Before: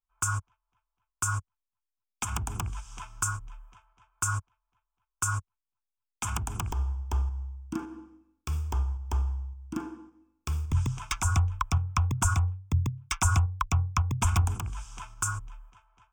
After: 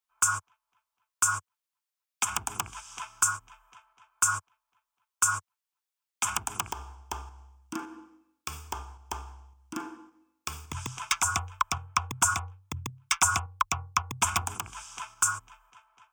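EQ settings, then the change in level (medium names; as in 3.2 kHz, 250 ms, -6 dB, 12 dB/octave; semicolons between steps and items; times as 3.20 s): high-pass 880 Hz 6 dB/octave; +6.0 dB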